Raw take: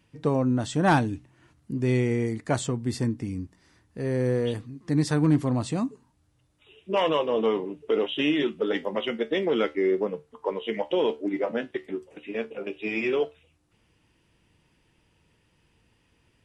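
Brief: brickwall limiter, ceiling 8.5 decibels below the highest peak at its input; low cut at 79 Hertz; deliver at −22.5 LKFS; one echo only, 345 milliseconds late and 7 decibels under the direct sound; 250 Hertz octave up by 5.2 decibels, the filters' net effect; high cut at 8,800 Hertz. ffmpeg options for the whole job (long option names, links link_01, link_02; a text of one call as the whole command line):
ffmpeg -i in.wav -af "highpass=79,lowpass=8800,equalizer=frequency=250:width_type=o:gain=6.5,alimiter=limit=-16dB:level=0:latency=1,aecho=1:1:345:0.447,volume=4dB" out.wav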